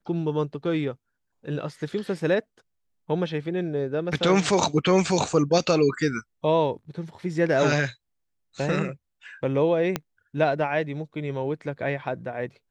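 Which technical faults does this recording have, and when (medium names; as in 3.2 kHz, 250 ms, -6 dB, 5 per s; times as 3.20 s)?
9.96 s: pop -10 dBFS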